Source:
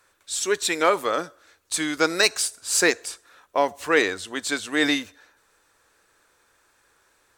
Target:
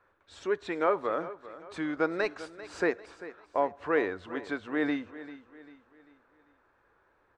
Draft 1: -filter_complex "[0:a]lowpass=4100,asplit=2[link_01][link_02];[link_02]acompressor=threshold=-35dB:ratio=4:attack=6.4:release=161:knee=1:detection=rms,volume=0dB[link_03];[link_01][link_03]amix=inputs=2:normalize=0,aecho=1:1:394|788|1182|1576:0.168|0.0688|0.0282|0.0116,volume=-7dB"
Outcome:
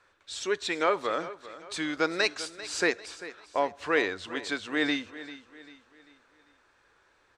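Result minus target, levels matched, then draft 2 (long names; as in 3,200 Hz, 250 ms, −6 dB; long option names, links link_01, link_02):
4,000 Hz band +12.5 dB
-filter_complex "[0:a]lowpass=1400,asplit=2[link_01][link_02];[link_02]acompressor=threshold=-35dB:ratio=4:attack=6.4:release=161:knee=1:detection=rms,volume=0dB[link_03];[link_01][link_03]amix=inputs=2:normalize=0,aecho=1:1:394|788|1182|1576:0.168|0.0688|0.0282|0.0116,volume=-7dB"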